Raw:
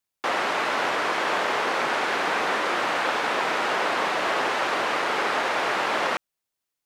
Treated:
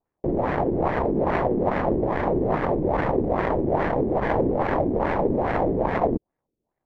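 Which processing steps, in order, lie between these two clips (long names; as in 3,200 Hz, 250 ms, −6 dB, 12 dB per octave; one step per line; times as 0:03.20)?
sample-rate reduction 1,400 Hz, jitter 20%
auto-filter low-pass sine 2.4 Hz 330–1,700 Hz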